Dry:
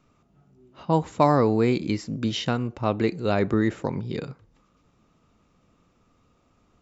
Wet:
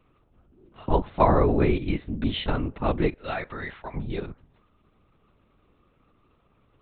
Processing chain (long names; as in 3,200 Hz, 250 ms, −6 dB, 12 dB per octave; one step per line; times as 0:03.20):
0:03.13–0:03.95: high-pass filter 880 Hz 12 dB per octave
linear-prediction vocoder at 8 kHz whisper